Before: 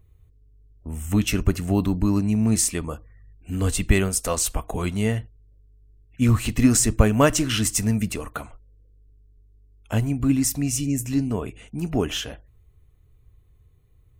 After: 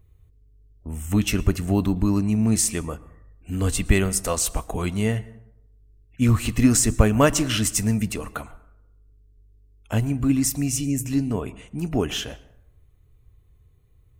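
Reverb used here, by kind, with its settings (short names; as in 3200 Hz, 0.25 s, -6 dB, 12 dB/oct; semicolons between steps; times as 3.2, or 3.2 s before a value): plate-style reverb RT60 0.79 s, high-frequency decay 0.5×, pre-delay 0.1 s, DRR 19.5 dB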